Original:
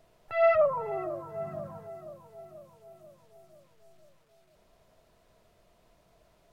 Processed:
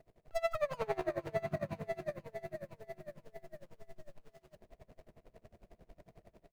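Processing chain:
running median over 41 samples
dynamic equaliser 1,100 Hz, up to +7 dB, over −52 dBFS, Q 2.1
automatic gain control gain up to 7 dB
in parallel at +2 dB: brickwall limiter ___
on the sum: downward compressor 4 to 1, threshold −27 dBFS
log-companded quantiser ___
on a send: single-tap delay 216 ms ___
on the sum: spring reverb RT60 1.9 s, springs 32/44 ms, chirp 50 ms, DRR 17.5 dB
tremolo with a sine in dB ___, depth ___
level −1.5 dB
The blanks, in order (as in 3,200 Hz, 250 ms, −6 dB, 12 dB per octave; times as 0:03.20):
−18.5 dBFS, 8 bits, −23 dB, 11 Hz, 25 dB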